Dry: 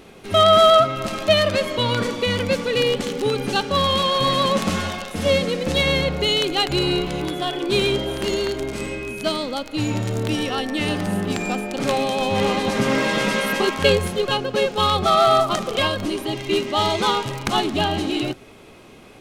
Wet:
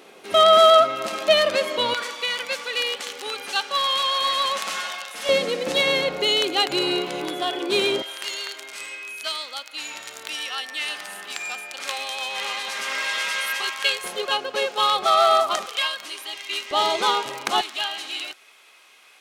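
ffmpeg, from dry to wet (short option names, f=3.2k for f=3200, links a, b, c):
-af "asetnsamples=n=441:p=0,asendcmd='1.94 highpass f 1000;5.29 highpass f 360;8.02 highpass f 1400;14.04 highpass f 630;15.66 highpass f 1400;16.71 highpass f 470;17.61 highpass f 1400',highpass=390"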